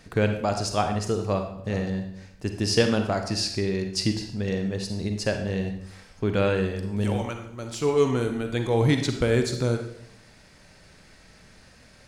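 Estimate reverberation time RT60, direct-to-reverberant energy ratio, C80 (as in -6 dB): 0.70 s, 5.5 dB, 10.0 dB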